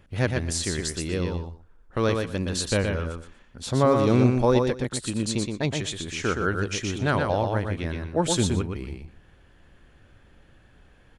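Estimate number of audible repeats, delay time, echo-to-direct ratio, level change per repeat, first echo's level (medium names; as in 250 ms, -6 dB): 2, 120 ms, -4.5 dB, -15.0 dB, -4.5 dB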